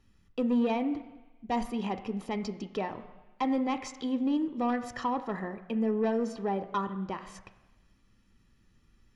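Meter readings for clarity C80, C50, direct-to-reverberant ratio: 14.0 dB, 12.5 dB, 9.0 dB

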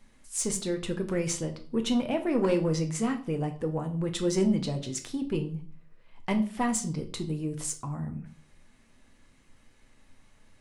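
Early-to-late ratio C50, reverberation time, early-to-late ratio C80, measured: 13.0 dB, 0.40 s, 17.5 dB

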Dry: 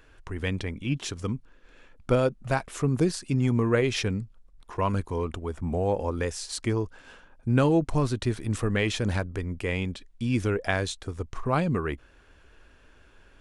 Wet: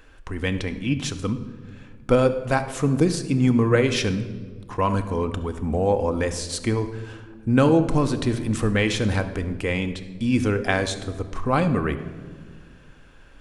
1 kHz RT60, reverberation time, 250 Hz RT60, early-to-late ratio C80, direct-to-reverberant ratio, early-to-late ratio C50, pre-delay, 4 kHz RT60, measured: 1.4 s, 1.6 s, 2.3 s, 13.5 dB, 8.0 dB, 11.5 dB, 4 ms, 1.0 s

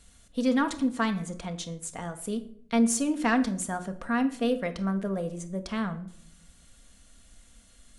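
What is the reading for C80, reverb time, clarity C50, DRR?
17.5 dB, 0.65 s, 14.0 dB, 6.5 dB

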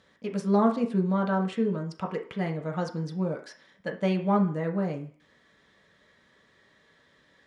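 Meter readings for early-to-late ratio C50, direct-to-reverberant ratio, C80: 10.5 dB, 1.0 dB, 15.0 dB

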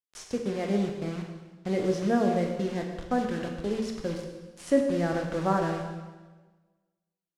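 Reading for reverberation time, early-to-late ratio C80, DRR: 1.3 s, 6.5 dB, 2.0 dB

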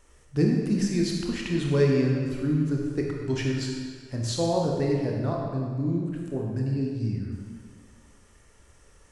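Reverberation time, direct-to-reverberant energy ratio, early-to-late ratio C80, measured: 1.9 s, -1.0 dB, 2.5 dB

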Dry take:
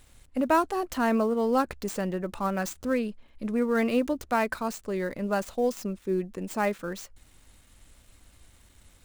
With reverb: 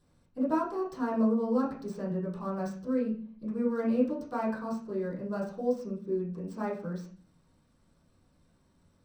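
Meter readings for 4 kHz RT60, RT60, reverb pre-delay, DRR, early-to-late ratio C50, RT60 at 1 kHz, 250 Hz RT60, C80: 0.40 s, 0.45 s, 3 ms, -11.0 dB, 7.0 dB, 0.45 s, 0.70 s, 11.5 dB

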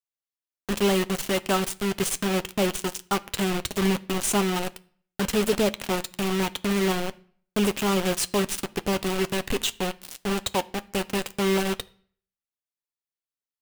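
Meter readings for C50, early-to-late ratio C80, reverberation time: 22.5 dB, 26.5 dB, 0.50 s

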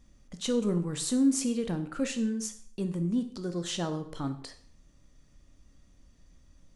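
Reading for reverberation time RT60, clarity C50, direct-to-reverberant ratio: 0.55 s, 12.0 dB, 7.5 dB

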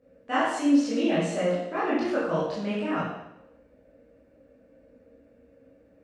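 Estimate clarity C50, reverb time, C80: -0.5 dB, 0.80 s, 3.5 dB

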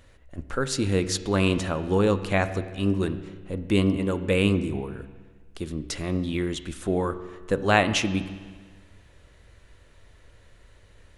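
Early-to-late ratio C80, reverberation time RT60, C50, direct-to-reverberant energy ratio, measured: 13.5 dB, 1.5 s, 12.0 dB, 10.5 dB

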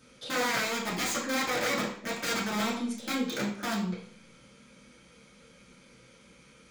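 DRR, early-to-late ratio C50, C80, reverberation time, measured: -8.0 dB, 5.0 dB, 9.0 dB, 0.55 s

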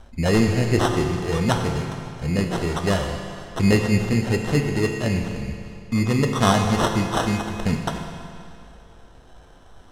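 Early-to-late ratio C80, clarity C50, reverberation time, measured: 5.5 dB, 4.5 dB, 2.5 s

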